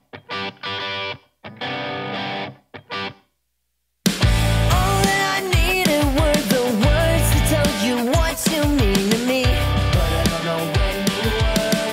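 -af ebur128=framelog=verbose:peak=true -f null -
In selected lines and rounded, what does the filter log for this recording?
Integrated loudness:
  I:         -19.4 LUFS
  Threshold: -29.8 LUFS
Loudness range:
  LRA:        10.0 LU
  Threshold: -39.5 LUFS
  LRA low:   -27.6 LUFS
  LRA high:  -17.6 LUFS
True peak:
  Peak:       -5.8 dBFS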